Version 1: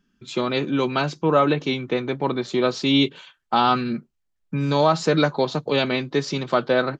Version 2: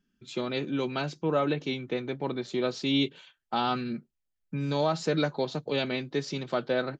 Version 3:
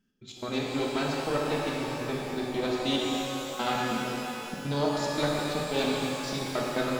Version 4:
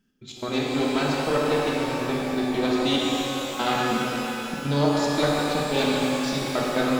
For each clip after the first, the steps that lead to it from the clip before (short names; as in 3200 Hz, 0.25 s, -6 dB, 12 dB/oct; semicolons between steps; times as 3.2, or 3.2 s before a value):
bell 1100 Hz -5.5 dB 0.61 oct; gain -7.5 dB
one diode to ground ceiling -30 dBFS; step gate "x.x.xx.x.x" 142 bpm -24 dB; shimmer reverb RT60 3.4 s, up +12 st, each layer -8 dB, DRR -3 dB
spring tank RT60 2.9 s, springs 35 ms, chirp 25 ms, DRR 6 dB; gain +4.5 dB